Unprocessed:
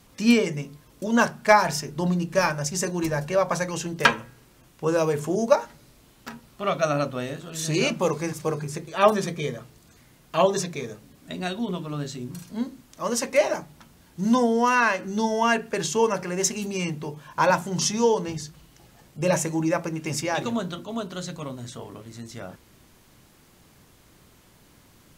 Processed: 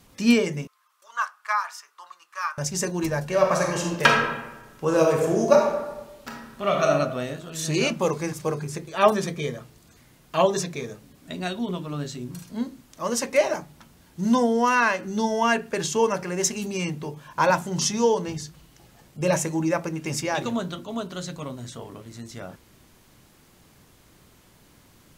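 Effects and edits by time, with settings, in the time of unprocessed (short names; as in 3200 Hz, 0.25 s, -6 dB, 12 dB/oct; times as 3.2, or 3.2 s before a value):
0.67–2.58 ladder high-pass 1100 Hz, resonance 75%
3.25–6.87 reverb throw, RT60 1.1 s, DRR 0.5 dB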